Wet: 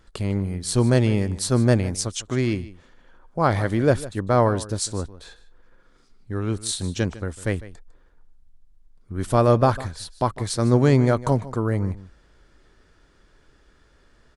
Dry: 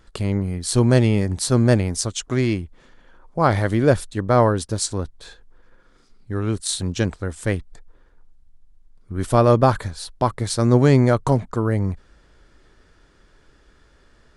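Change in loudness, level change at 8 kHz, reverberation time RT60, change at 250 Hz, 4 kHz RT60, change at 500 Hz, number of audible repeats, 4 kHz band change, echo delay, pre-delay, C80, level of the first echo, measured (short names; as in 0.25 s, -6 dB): -2.5 dB, -2.5 dB, none, -2.5 dB, none, -2.5 dB, 1, -2.5 dB, 0.152 s, none, none, -17.0 dB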